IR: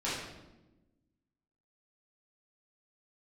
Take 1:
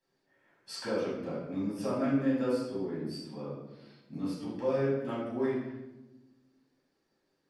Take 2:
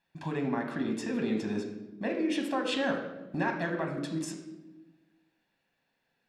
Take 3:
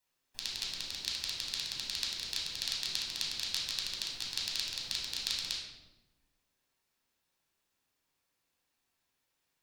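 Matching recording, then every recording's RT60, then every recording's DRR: 1; 1.1, 1.1, 1.1 seconds; −10.0, 3.0, −4.5 decibels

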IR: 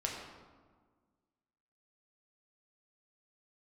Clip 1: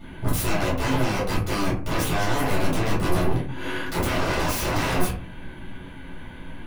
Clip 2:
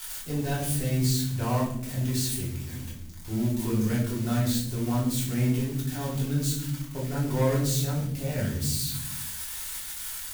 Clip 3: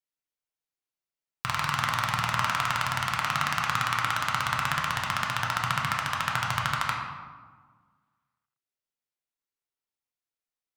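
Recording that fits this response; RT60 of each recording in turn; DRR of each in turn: 3; 0.40 s, non-exponential decay, 1.6 s; −9.0, −7.5, −2.0 decibels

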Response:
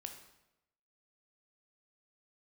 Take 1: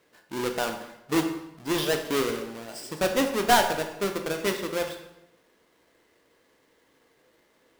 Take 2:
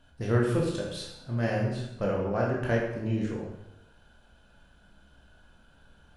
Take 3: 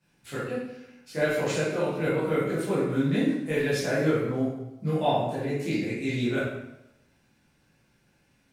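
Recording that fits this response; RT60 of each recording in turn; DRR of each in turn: 1; 0.90, 0.90, 0.90 seconds; 4.5, −3.0, −11.5 decibels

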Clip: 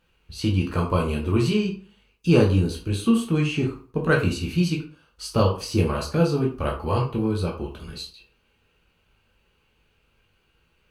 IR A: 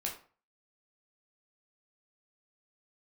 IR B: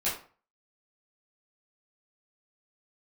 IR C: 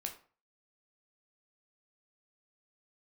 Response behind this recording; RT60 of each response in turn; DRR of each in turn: A; 0.40, 0.40, 0.40 seconds; −1.5, −10.0, 2.5 decibels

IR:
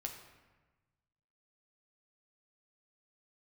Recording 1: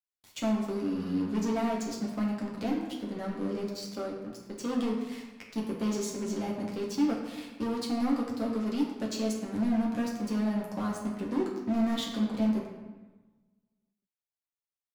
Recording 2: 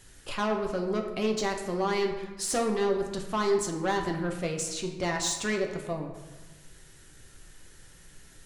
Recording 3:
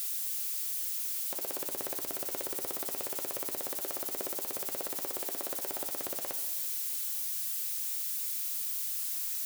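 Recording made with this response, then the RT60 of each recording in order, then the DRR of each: 2; 1.2, 1.2, 1.3 seconds; −3.0, 2.0, 8.0 decibels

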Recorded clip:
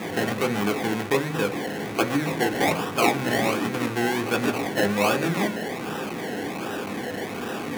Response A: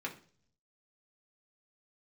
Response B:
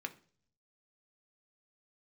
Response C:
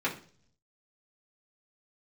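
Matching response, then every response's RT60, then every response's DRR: B; 0.45, 0.45, 0.45 seconds; −2.0, 5.5, −7.0 decibels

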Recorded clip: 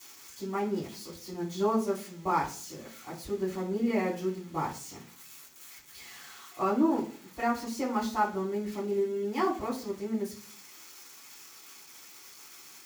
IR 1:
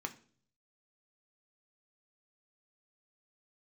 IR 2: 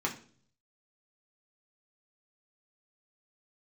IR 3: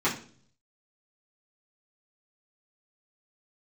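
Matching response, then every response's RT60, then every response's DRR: 3; 0.45, 0.45, 0.45 seconds; 5.5, −1.5, −9.5 decibels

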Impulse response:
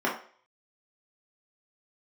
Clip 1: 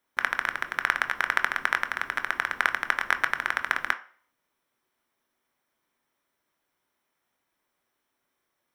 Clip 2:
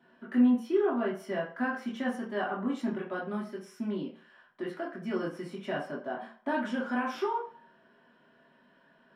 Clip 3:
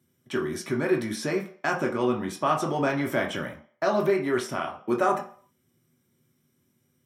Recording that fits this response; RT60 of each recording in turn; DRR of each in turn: 2; 0.45, 0.45, 0.45 seconds; 8.0, −5.5, 0.5 decibels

